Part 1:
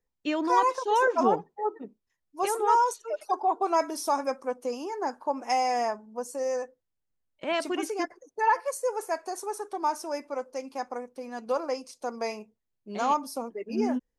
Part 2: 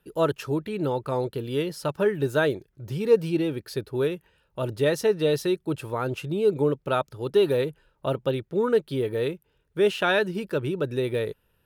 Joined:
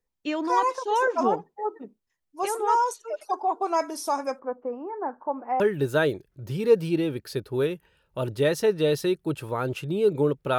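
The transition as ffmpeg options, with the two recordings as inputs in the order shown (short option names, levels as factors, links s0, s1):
-filter_complex "[0:a]asettb=1/sr,asplit=3[s0][s1][s2];[s0]atrim=end=4.394[s3];[s1]atrim=start=4.39:end=5.6,asetpts=PTS-STARTPTS,afade=t=in:d=0.004:c=qsin,afade=t=out:st=1.206:d=0.004:c=qsin,lowpass=f=1600:w=0.5412,lowpass=f=1600:w=1.3066[s4];[s2]atrim=start=5.596[s5];[s3][s4]acrossfade=d=0.004:c1=hsin:c2=qsin[s6];[s6][s5]acrossfade=d=0.004:c1=qsin:c2=hsin,apad=whole_dur=10.58,atrim=end=10.58,atrim=end=5.602[s7];[1:a]atrim=start=2.008:end=6.99[s8];[s7][s8]acrossfade=d=0.004:c1=hsin:c2=hsin"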